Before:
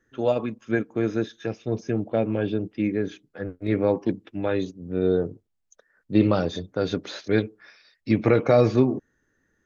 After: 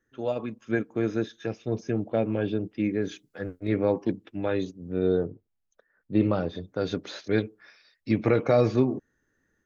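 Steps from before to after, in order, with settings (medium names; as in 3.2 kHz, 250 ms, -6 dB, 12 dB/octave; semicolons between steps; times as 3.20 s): 3.02–3.60 s: treble shelf 3.7 kHz +10 dB; level rider gain up to 5 dB; 5.25–6.63 s: distance through air 230 m; trim -7 dB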